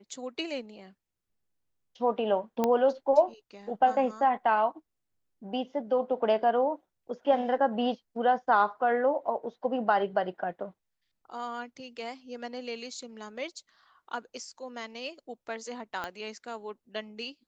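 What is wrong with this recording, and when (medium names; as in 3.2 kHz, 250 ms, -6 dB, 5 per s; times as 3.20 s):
2.64 s: pop -13 dBFS
16.04 s: pop -20 dBFS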